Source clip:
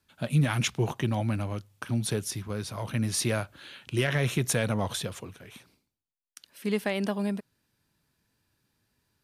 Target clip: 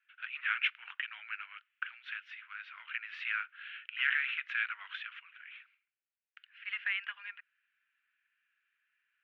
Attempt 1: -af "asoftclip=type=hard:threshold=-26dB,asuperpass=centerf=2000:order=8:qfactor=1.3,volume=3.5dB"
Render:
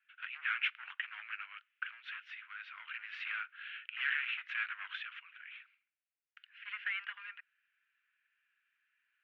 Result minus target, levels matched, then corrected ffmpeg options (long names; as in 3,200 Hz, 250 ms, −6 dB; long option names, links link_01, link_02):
hard clipping: distortion +13 dB
-af "asoftclip=type=hard:threshold=-18.5dB,asuperpass=centerf=2000:order=8:qfactor=1.3,volume=3.5dB"